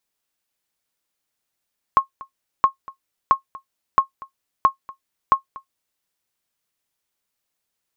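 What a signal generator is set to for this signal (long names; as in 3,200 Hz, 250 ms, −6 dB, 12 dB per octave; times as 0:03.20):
ping with an echo 1,080 Hz, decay 0.11 s, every 0.67 s, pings 6, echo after 0.24 s, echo −22 dB −4.5 dBFS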